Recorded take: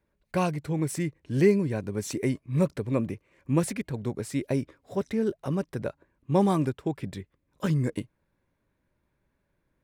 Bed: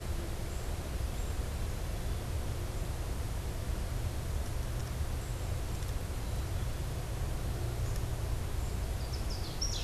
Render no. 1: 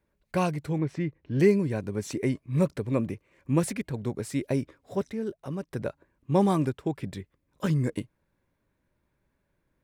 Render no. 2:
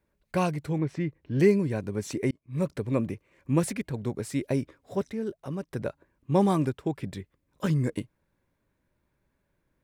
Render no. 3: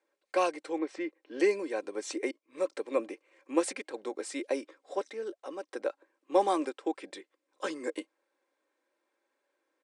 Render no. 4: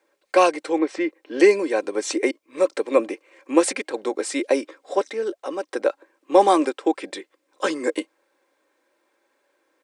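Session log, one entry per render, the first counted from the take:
0.78–1.4 air absorption 240 m; 1.96–2.37 high shelf 5500 Hz -> 9100 Hz -7 dB; 5.1–5.71 gain -5.5 dB
2.31–2.8 fade in
Chebyshev band-pass 340–9000 Hz, order 4; comb 3.8 ms, depth 45%
gain +11.5 dB; limiter -3 dBFS, peak gain reduction 2 dB

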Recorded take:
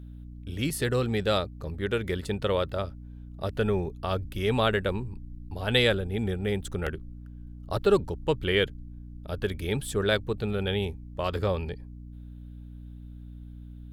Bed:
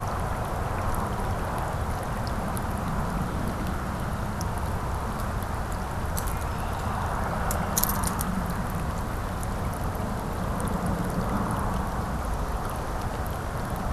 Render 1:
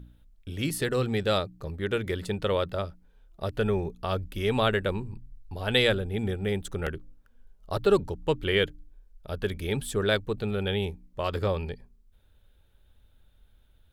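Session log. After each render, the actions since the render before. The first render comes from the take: de-hum 60 Hz, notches 5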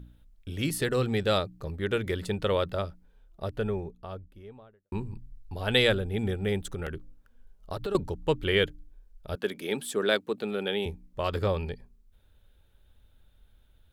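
2.83–4.92 studio fade out; 6.74–7.95 compressor, threshold -29 dBFS; 9.35–10.86 HPF 200 Hz 24 dB/oct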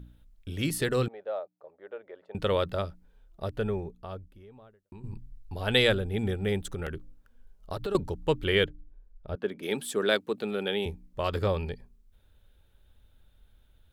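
1.08–2.35 ladder band-pass 700 Hz, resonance 55%; 4.33–5.04 compressor 3:1, threshold -47 dBFS; 8.64–9.63 LPF 1200 Hz 6 dB/oct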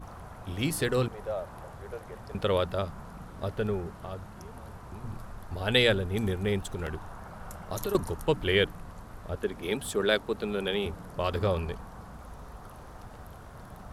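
add bed -16 dB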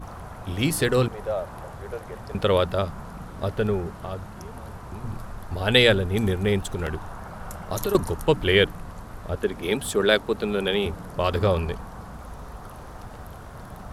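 gain +6 dB

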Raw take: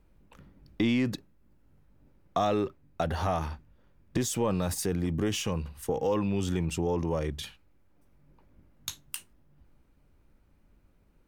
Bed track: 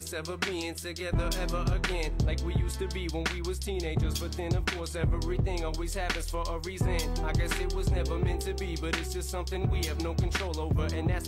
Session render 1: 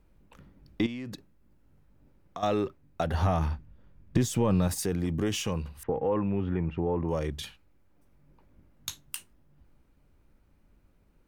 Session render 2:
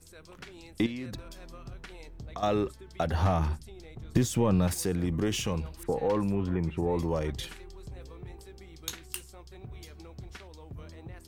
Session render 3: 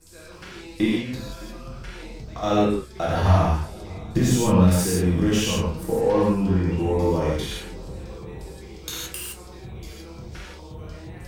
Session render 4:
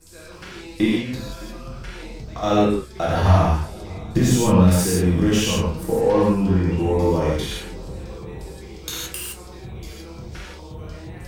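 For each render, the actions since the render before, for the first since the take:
0.86–2.43 compressor 5:1, threshold -36 dBFS; 3.14–4.68 tone controls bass +7 dB, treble -3 dB; 5.83–7.09 LPF 2100 Hz 24 dB/oct
add bed track -16 dB
dark delay 0.61 s, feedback 69%, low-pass 1300 Hz, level -21.5 dB; non-linear reverb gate 0.19 s flat, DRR -7 dB
gain +2.5 dB; limiter -3 dBFS, peak gain reduction 1.5 dB

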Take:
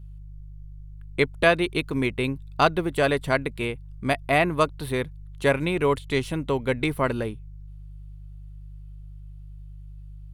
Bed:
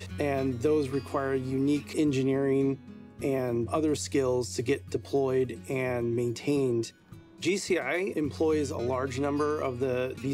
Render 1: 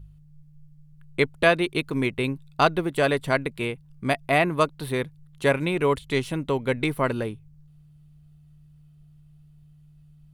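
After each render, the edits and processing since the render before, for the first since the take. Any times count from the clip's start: de-hum 50 Hz, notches 2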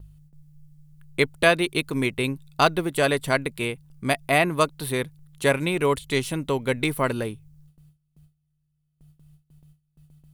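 gate with hold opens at -45 dBFS; high shelf 5300 Hz +11 dB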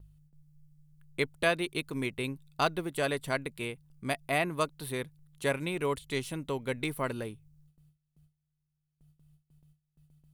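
gain -9 dB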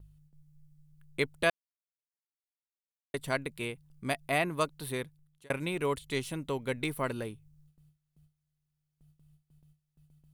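1.5–3.14 mute; 4.96–5.5 fade out

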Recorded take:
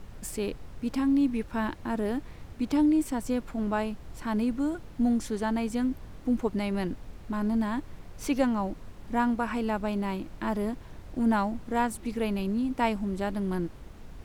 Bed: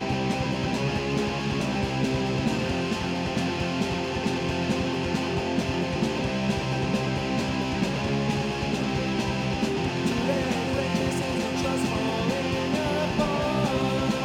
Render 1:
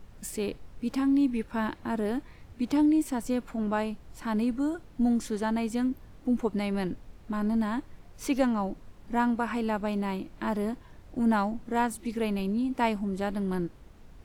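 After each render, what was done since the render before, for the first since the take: noise print and reduce 6 dB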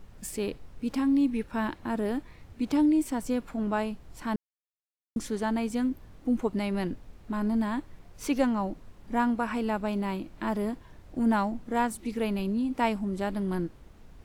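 4.36–5.16 mute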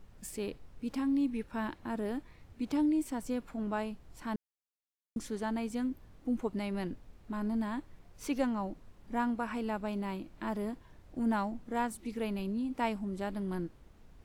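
gain -6 dB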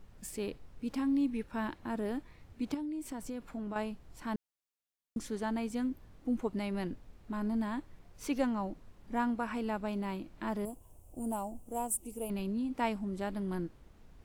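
2.74–3.76 compressor 12:1, threshold -35 dBFS; 10.65–12.3 EQ curve 100 Hz 0 dB, 180 Hz -8 dB, 730 Hz 0 dB, 1300 Hz -12 dB, 1800 Hz -25 dB, 2800 Hz -6 dB, 4000 Hz -18 dB, 8400 Hz +14 dB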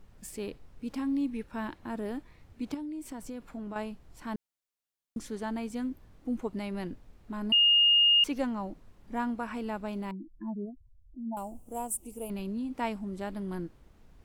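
7.52–8.24 bleep 2840 Hz -18.5 dBFS; 10.11–11.37 spectral contrast raised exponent 2.9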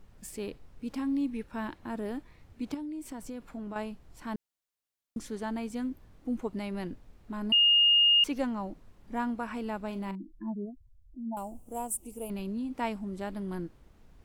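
9.86–10.52 doubler 41 ms -12.5 dB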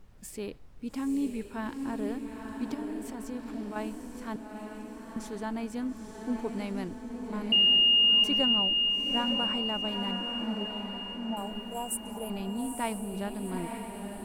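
diffused feedback echo 0.889 s, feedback 55%, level -5 dB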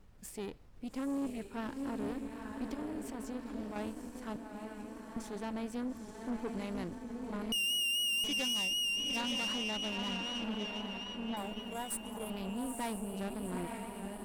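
vibrato 3.9 Hz 40 cents; tube stage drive 32 dB, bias 0.7

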